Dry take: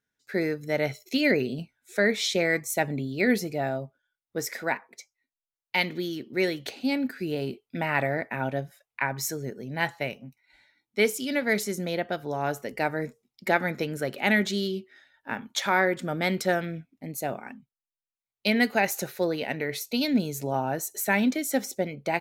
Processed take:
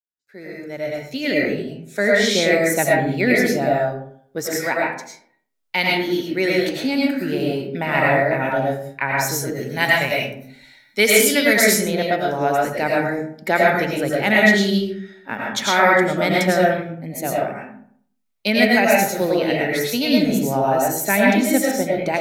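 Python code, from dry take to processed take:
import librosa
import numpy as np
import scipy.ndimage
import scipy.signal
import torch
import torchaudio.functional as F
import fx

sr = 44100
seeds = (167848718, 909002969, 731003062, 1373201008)

y = fx.fade_in_head(x, sr, length_s=2.44)
y = fx.high_shelf(y, sr, hz=3000.0, db=11.0, at=(9.45, 11.7))
y = fx.rev_freeverb(y, sr, rt60_s=0.62, hf_ratio=0.5, predelay_ms=65, drr_db=-4.0)
y = y * librosa.db_to_amplitude(4.0)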